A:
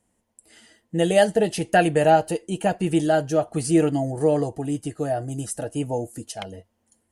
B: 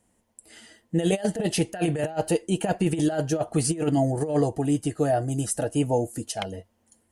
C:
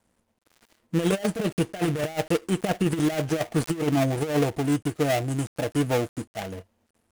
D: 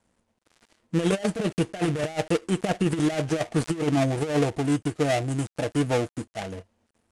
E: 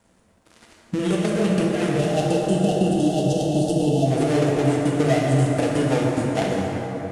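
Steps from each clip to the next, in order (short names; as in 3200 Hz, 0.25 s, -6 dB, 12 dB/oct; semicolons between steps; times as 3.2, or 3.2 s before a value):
negative-ratio compressor -22 dBFS, ratio -0.5
switching dead time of 0.27 ms
LPF 10000 Hz 24 dB/oct
spectral gain 1.99–4.06, 890–2600 Hz -28 dB; compressor, threshold -30 dBFS, peak gain reduction 12 dB; plate-style reverb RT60 4.5 s, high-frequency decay 0.45×, DRR -3.5 dB; gain +8 dB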